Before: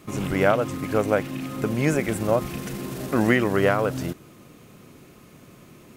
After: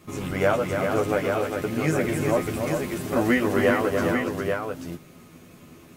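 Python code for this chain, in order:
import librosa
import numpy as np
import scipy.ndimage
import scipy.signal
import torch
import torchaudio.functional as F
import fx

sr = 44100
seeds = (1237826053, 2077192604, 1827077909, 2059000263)

p1 = fx.doubler(x, sr, ms=12.0, db=-3.0)
p2 = p1 + fx.echo_multitap(p1, sr, ms=(287, 401, 836), db=(-7.0, -6.0, -5.0), dry=0)
y = p2 * 10.0 ** (-4.0 / 20.0)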